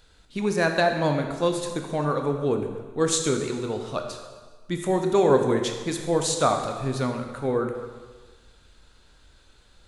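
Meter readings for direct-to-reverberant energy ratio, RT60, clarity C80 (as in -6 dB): 4.5 dB, 1.5 s, 7.5 dB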